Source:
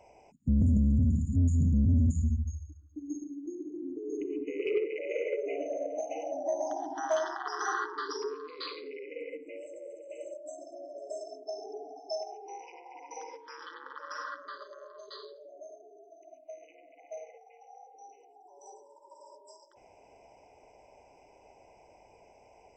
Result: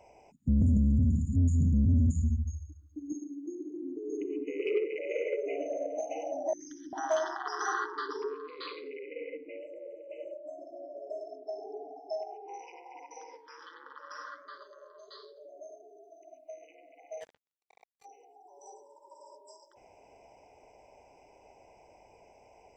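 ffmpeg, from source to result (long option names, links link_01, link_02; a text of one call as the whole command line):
ffmpeg -i in.wav -filter_complex "[0:a]asettb=1/sr,asplit=3[link_01][link_02][link_03];[link_01]atrim=end=0.764[link_04];[link_02]atrim=start=0.76:end=2.56,asetpts=PTS-STARTPTS,afade=type=in:duration=0.004:curve=qsin,afade=type=out:start_time=1.796:duration=0.004:curve=qsin,equalizer=frequency=1200:width=1.5:gain=-8.5[link_05];[link_03]atrim=start=2.556[link_06];[link_04][link_05]acrossfade=duration=0.004:curve1=hsin:curve2=qsin[link_07];[link_07][link_06]acrossfade=duration=0.004:curve1=qsin:curve2=hsin,asettb=1/sr,asplit=3[link_08][link_09][link_10];[link_08]atrim=end=3.124[link_11];[link_09]atrim=start=3.12:end=4.95,asetpts=PTS-STARTPTS,afade=type=in:duration=0.004:curve=qsin,afade=type=out:start_time=1.826:duration=0.004:curve=qsin,highpass=150[link_12];[link_10]atrim=start=4.946[link_13];[link_11][link_12]acrossfade=duration=0.004:curve1=hsin:curve2=qsin[link_14];[link_14][link_13]acrossfade=duration=0.004:curve1=qsin:curve2=hsin,asettb=1/sr,asplit=3[link_15][link_16][link_17];[link_15]atrim=end=6.534[link_18];[link_16]atrim=start=6.53:end=6.93,asetpts=PTS-STARTPTS,afade=type=in:duration=0.004:curve=qsin,afade=type=out:start_time=0.396:duration=0.004:curve=qsin,asuperstop=centerf=740:order=8:qfactor=0.55[link_19];[link_17]atrim=start=6.926[link_20];[link_18][link_19]acrossfade=duration=0.004:curve1=hsin:curve2=qsin[link_21];[link_21][link_20]acrossfade=duration=0.004:curve1=qsin:curve2=hsin,asettb=1/sr,asplit=3[link_22][link_23][link_24];[link_22]atrim=end=8.064[link_25];[link_23]atrim=start=8.06:end=12.54,asetpts=PTS-STARTPTS,afade=type=in:duration=0.004:curve=qsin,afade=type=out:start_time=4.476:duration=0.004:curve=qsin,lowpass=frequency=3900:width=0.5412,lowpass=frequency=3900:width=1.3066[link_26];[link_24]atrim=start=12.536[link_27];[link_25][link_26]acrossfade=duration=0.004:curve1=hsin:curve2=qsin[link_28];[link_28][link_27]acrossfade=duration=0.004:curve1=qsin:curve2=hsin,asettb=1/sr,asplit=3[link_29][link_30][link_31];[link_29]atrim=end=13.064[link_32];[link_30]atrim=start=13.06:end=15.37,asetpts=PTS-STARTPTS,afade=type=in:duration=0.004:curve=qsin,afade=type=out:start_time=2.306:duration=0.004:curve=qsin,flanger=delay=5.3:depth=8.4:regen=73:speed=1.3:shape=triangular[link_33];[link_31]atrim=start=15.366[link_34];[link_32][link_33]acrossfade=duration=0.004:curve1=hsin:curve2=qsin[link_35];[link_35][link_34]acrossfade=duration=0.004:curve1=qsin:curve2=hsin,asplit=3[link_36][link_37][link_38];[link_36]afade=type=out:start_time=17.2:duration=0.02[link_39];[link_37]acrusher=bits=6:mix=0:aa=0.5,afade=type=in:start_time=17.2:duration=0.02,afade=type=out:start_time=18.04:duration=0.02[link_40];[link_38]afade=type=in:start_time=18.04:duration=0.02[link_41];[link_39][link_40][link_41]amix=inputs=3:normalize=0" out.wav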